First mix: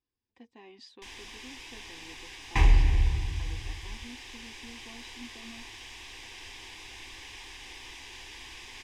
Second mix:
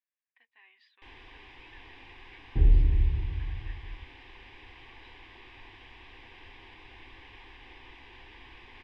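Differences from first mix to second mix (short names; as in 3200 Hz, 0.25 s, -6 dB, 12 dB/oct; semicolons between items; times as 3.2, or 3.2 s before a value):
speech: add resonant high-pass 1800 Hz, resonance Q 2.1; second sound: add inverse Chebyshev low-pass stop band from 1700 Hz, stop band 60 dB; master: add air absorption 440 m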